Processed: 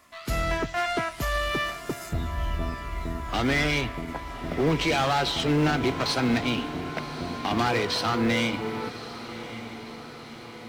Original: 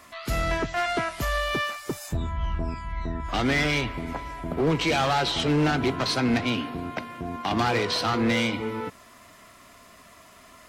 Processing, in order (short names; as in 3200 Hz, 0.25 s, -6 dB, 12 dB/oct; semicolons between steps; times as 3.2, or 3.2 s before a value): G.711 law mismatch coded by A; on a send: diffused feedback echo 1.123 s, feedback 58%, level -13 dB